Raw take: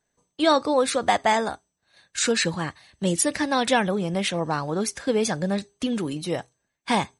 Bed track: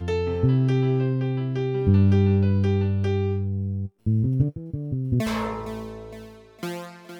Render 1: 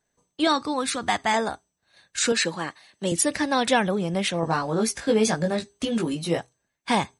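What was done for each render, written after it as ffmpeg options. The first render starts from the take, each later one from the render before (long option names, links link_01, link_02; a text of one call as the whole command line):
ffmpeg -i in.wav -filter_complex "[0:a]asettb=1/sr,asplit=3[link_01][link_02][link_03];[link_01]atrim=end=0.474[link_04];[link_02]atrim=start=0.47:end=1.34,asetpts=PTS-STARTPTS,afade=type=in:duration=0.004:curve=qsin,afade=type=out:start_time=0.866:duration=0.004:curve=qsin,equalizer=frequency=550:width_type=o:width=0.77:gain=-11[link_05];[link_03]atrim=start=1.336[link_06];[link_04][link_05]acrossfade=duration=0.004:curve1=hsin:curve2=qsin[link_07];[link_07][link_06]acrossfade=duration=0.004:curve1=qsin:curve2=hsin,asettb=1/sr,asplit=3[link_08][link_09][link_10];[link_08]atrim=end=2.324[link_11];[link_09]atrim=start=2.32:end=3.12,asetpts=PTS-STARTPTS,afade=type=in:duration=0.004:curve=qsin,afade=type=out:start_time=0.796:duration=0.004:curve=qsin,highpass=240[link_12];[link_10]atrim=start=3.116[link_13];[link_11][link_12]acrossfade=duration=0.004:curve1=hsin:curve2=qsin[link_14];[link_14][link_13]acrossfade=duration=0.004:curve1=qsin:curve2=hsin,asettb=1/sr,asplit=3[link_15][link_16][link_17];[link_15]atrim=end=4.414[link_18];[link_16]atrim=start=4.41:end=6.39,asetpts=PTS-STARTPTS,afade=type=in:duration=0.004:curve=qsin,afade=type=out:start_time=1.976:duration=0.004:curve=qsin,asplit=2[link_19][link_20];[link_20]adelay=18,volume=-2.5dB[link_21];[link_19][link_21]amix=inputs=2:normalize=0,atrim=end_sample=87318[link_22];[link_17]atrim=start=6.386[link_23];[link_18][link_22]acrossfade=duration=0.004:curve1=hsin:curve2=qsin[link_24];[link_24][link_23]acrossfade=duration=0.004:curve1=qsin:curve2=hsin" out.wav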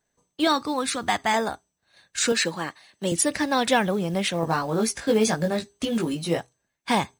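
ffmpeg -i in.wav -af "acrusher=bits=7:mode=log:mix=0:aa=0.000001" out.wav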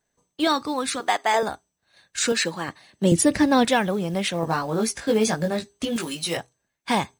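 ffmpeg -i in.wav -filter_complex "[0:a]asettb=1/sr,asplit=3[link_01][link_02][link_03];[link_01]atrim=end=1.004[link_04];[link_02]atrim=start=1:end=1.43,asetpts=PTS-STARTPTS,afade=type=in:duration=0.004:curve=qsin,afade=type=out:start_time=0.426:duration=0.004:curve=qsin,highpass=frequency=450:width_type=q:width=1.7[link_05];[link_03]atrim=start=1.426[link_06];[link_04][link_05]acrossfade=duration=0.004:curve1=hsin:curve2=qsin[link_07];[link_07][link_06]acrossfade=duration=0.004:curve1=qsin:curve2=hsin,asettb=1/sr,asplit=3[link_08][link_09][link_10];[link_08]atrim=end=2.684[link_11];[link_09]atrim=start=2.68:end=3.65,asetpts=PTS-STARTPTS,afade=type=in:duration=0.004:curve=qsin,afade=type=out:start_time=0.966:duration=0.004:curve=qsin,lowshelf=frequency=430:gain=11.5[link_12];[link_10]atrim=start=3.646[link_13];[link_11][link_12]acrossfade=duration=0.004:curve1=hsin:curve2=qsin[link_14];[link_14][link_13]acrossfade=duration=0.004:curve1=qsin:curve2=hsin,asettb=1/sr,asplit=3[link_15][link_16][link_17];[link_15]atrim=end=5.964[link_18];[link_16]atrim=start=5.96:end=6.37,asetpts=PTS-STARTPTS,afade=type=in:duration=0.004:curve=qsin,afade=type=out:start_time=0.406:duration=0.004:curve=qsin,tiltshelf=frequency=940:gain=-7.5[link_19];[link_17]atrim=start=6.366[link_20];[link_18][link_19]acrossfade=duration=0.004:curve1=hsin:curve2=qsin[link_21];[link_21][link_20]acrossfade=duration=0.004:curve1=qsin:curve2=hsin" out.wav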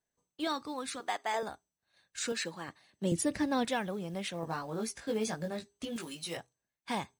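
ffmpeg -i in.wav -af "volume=-12.5dB" out.wav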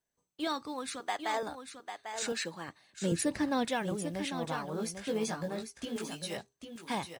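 ffmpeg -i in.wav -af "aecho=1:1:797:0.398" out.wav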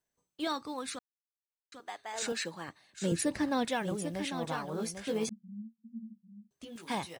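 ffmpeg -i in.wav -filter_complex "[0:a]asettb=1/sr,asplit=3[link_01][link_02][link_03];[link_01]atrim=end=5.294[link_04];[link_02]atrim=start=5.29:end=6.51,asetpts=PTS-STARTPTS,afade=type=in:duration=0.004:curve=qsin,afade=type=out:start_time=1.216:duration=0.004:curve=qsin,asuperpass=centerf=210:order=8:qfactor=5.3[link_05];[link_03]atrim=start=6.506[link_06];[link_04][link_05]acrossfade=duration=0.004:curve1=hsin:curve2=qsin[link_07];[link_07][link_06]acrossfade=duration=0.004:curve1=qsin:curve2=hsin,asplit=3[link_08][link_09][link_10];[link_08]atrim=end=0.99,asetpts=PTS-STARTPTS,afade=type=out:start_time=0.986:duration=0.004:curve=hsin[link_11];[link_09]atrim=start=0.99:end=1.72,asetpts=PTS-STARTPTS,volume=0[link_12];[link_10]atrim=start=1.72,asetpts=PTS-STARTPTS,afade=type=in:duration=0.004:curve=hsin[link_13];[link_11][link_12][link_13]concat=n=3:v=0:a=1" out.wav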